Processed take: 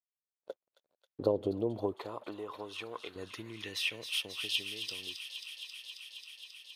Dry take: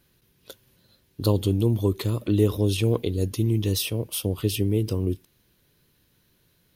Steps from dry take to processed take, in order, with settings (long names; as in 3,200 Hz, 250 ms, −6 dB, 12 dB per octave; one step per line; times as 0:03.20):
dead-zone distortion −53.5 dBFS
downward compressor, threshold −23 dBFS, peak gain reduction 8.5 dB
0:01.94–0:03.16: low-shelf EQ 370 Hz −12 dB
band-pass filter sweep 570 Hz → 4,100 Hz, 0:01.49–0:05.03
on a send: delay with a high-pass on its return 269 ms, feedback 84%, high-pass 2,100 Hz, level −8 dB
on the sum: level +7 dB